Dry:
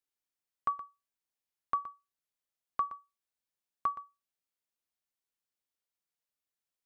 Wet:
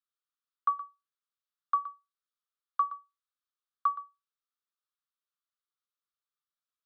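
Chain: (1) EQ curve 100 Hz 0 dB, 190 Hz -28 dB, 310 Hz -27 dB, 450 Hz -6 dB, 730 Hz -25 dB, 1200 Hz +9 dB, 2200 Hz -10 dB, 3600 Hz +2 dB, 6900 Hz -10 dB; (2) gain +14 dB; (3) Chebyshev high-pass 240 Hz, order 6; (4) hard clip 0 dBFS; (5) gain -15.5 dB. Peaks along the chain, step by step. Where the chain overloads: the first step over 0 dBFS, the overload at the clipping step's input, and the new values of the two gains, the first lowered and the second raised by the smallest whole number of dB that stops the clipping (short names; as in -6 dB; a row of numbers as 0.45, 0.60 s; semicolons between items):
-15.5, -1.5, -1.5, -1.5, -17.0 dBFS; no overload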